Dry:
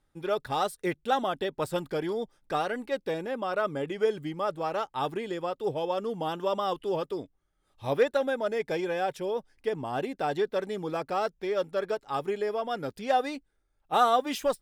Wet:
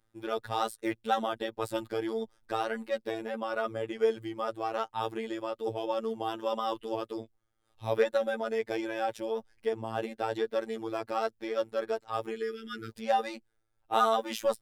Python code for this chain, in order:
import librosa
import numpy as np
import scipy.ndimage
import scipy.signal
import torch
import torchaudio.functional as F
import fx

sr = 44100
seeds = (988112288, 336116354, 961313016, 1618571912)

y = fx.spec_repair(x, sr, seeds[0], start_s=12.37, length_s=0.53, low_hz=440.0, high_hz=1200.0, source='after')
y = fx.robotise(y, sr, hz=112.0)